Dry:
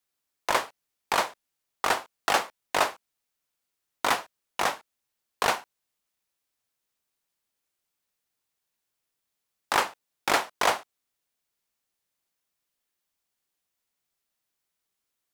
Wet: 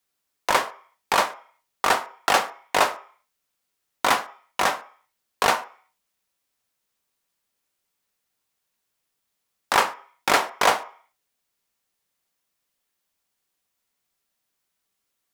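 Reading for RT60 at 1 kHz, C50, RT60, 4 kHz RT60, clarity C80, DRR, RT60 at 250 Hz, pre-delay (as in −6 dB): 0.50 s, 16.0 dB, 0.45 s, 0.55 s, 20.0 dB, 8.0 dB, 0.35 s, 3 ms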